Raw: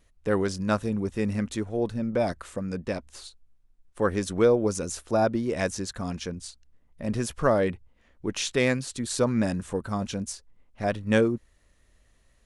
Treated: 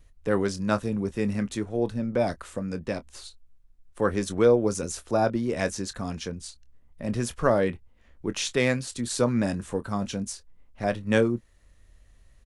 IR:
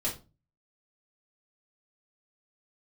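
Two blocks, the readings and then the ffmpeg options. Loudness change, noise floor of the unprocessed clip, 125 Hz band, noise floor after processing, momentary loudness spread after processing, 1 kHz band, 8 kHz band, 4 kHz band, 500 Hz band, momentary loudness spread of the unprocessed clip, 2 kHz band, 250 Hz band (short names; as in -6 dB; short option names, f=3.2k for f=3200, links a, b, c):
0.0 dB, -64 dBFS, 0.0 dB, -58 dBFS, 12 LU, 0.0 dB, 0.0 dB, 0.0 dB, +0.5 dB, 13 LU, 0.0 dB, 0.0 dB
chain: -filter_complex "[0:a]acrossover=split=120[a][b];[a]acompressor=mode=upward:threshold=-45dB:ratio=2.5[c];[c][b]amix=inputs=2:normalize=0,asplit=2[d][e];[e]adelay=25,volume=-13.5dB[f];[d][f]amix=inputs=2:normalize=0"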